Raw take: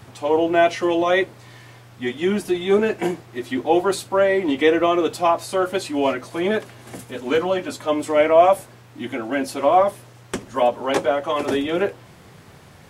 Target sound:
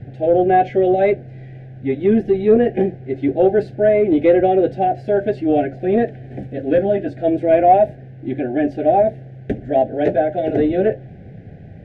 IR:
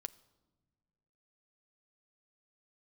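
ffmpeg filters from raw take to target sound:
-af "asuperstop=centerf=1000:order=12:qfactor=1.5,acontrast=35,asetrate=48000,aresample=44100,lowpass=1.3k,lowshelf=f=200:g=11,volume=-2dB"

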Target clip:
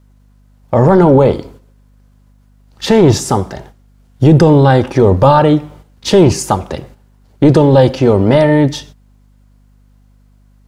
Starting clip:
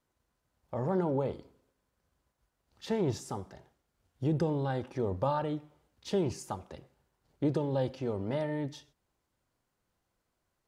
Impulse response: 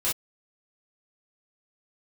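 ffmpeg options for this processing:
-af "aeval=exprs='val(0)+0.000708*(sin(2*PI*50*n/s)+sin(2*PI*2*50*n/s)/2+sin(2*PI*3*50*n/s)/3+sin(2*PI*4*50*n/s)/4+sin(2*PI*5*50*n/s)/5)':c=same,apsyclip=26dB,agate=range=-8dB:threshold=-34dB:ratio=16:detection=peak,volume=-1.5dB"

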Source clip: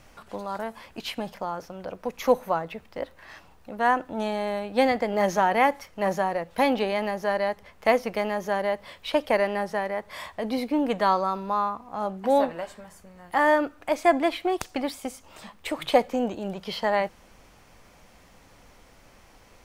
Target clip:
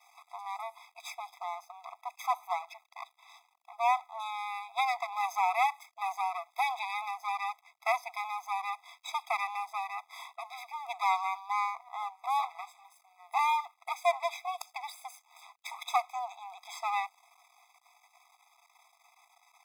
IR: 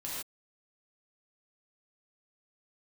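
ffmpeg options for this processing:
-af "aeval=exprs='max(val(0),0)':c=same,afftfilt=real='re*eq(mod(floor(b*sr/1024/660),2),1)':imag='im*eq(mod(floor(b*sr/1024/660),2),1)':win_size=1024:overlap=0.75"

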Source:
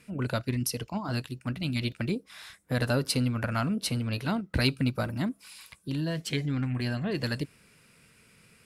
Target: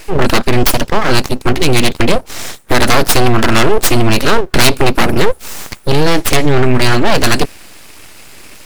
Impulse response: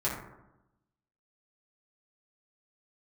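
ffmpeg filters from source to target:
-af "aeval=exprs='abs(val(0))':c=same,apsyclip=26.5dB,volume=-1.5dB"

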